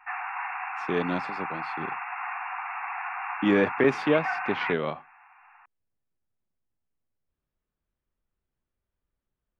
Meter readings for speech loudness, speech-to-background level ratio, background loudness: −27.0 LKFS, 6.0 dB, −33.0 LKFS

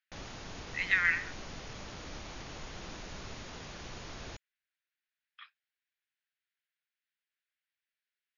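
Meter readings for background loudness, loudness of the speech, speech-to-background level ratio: −45.0 LKFS, −29.0 LKFS, 16.0 dB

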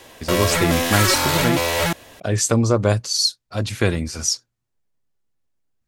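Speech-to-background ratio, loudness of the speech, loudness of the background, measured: −1.5 dB, −21.0 LKFS, −19.5 LKFS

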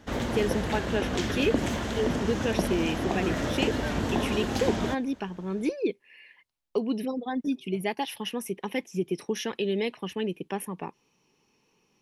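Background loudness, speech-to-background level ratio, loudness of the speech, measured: −29.5 LKFS, −1.5 dB, −31.0 LKFS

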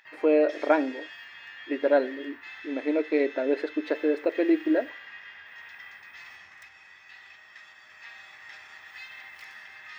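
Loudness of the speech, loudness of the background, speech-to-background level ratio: −26.0 LKFS, −43.5 LKFS, 17.5 dB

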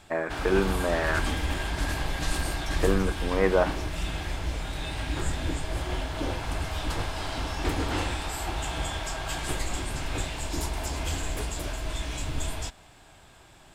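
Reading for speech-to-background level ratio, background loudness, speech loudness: 4.0 dB, −31.5 LKFS, −27.5 LKFS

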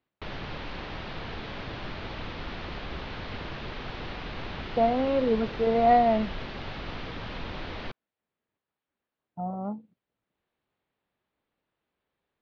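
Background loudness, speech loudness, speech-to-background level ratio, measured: −38.0 LKFS, −25.5 LKFS, 12.5 dB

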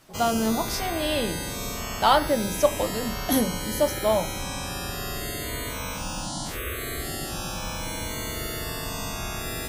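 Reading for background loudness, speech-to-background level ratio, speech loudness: −31.0 LKFS, 5.5 dB, −25.5 LKFS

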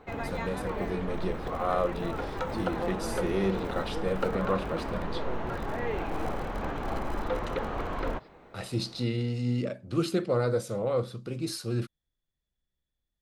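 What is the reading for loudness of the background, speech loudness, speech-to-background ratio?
−34.5 LKFS, −32.0 LKFS, 2.5 dB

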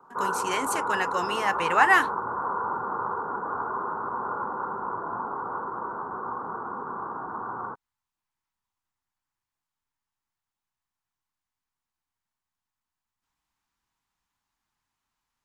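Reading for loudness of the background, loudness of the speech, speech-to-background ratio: −31.0 LKFS, −25.0 LKFS, 6.0 dB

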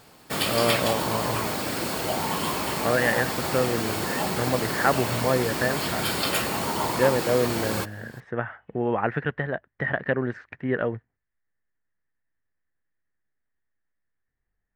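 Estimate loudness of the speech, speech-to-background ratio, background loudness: −27.5 LKFS, −1.0 dB, −26.5 LKFS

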